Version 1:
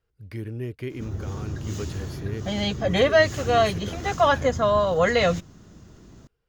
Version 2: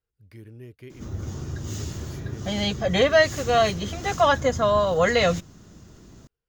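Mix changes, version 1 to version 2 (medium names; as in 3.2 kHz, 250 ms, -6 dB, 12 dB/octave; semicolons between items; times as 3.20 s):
speech -11.0 dB; master: add treble shelf 5 kHz +5.5 dB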